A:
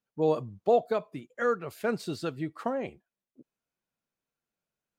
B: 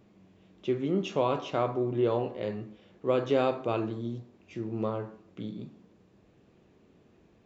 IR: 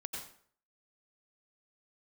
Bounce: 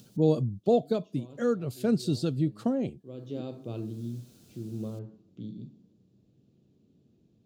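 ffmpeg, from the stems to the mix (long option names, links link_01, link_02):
-filter_complex "[0:a]acompressor=mode=upward:threshold=-38dB:ratio=2.5,volume=0dB,asplit=2[link_01][link_02];[1:a]volume=-10.5dB[link_03];[link_02]apad=whole_len=328552[link_04];[link_03][link_04]sidechaincompress=threshold=-44dB:ratio=8:attack=38:release=683[link_05];[link_01][link_05]amix=inputs=2:normalize=0,equalizer=frequency=125:width_type=o:width=1:gain=11,equalizer=frequency=250:width_type=o:width=1:gain=7,equalizer=frequency=1000:width_type=o:width=1:gain=-9,equalizer=frequency=2000:width_type=o:width=1:gain=-11,equalizer=frequency=4000:width_type=o:width=1:gain=6,equalizer=frequency=8000:width_type=o:width=1:gain=3"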